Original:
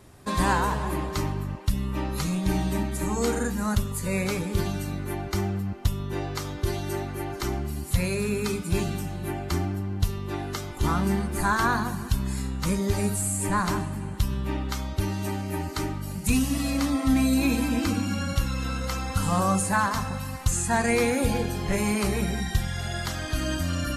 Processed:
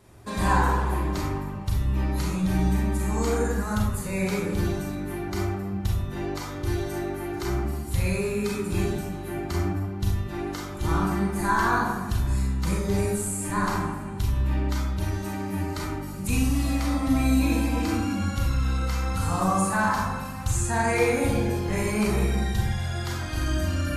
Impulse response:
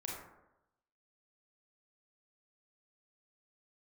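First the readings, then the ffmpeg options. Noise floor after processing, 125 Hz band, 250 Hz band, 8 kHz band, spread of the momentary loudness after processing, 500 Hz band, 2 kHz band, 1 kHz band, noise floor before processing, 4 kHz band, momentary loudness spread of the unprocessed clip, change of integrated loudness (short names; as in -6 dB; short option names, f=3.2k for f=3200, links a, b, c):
-34 dBFS, +1.5 dB, 0.0 dB, -2.5 dB, 8 LU, +1.0 dB, +0.5 dB, +1.0 dB, -35 dBFS, -3.0 dB, 8 LU, +0.5 dB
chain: -filter_complex "[1:a]atrim=start_sample=2205[a];[0:a][a]afir=irnorm=-1:irlink=0"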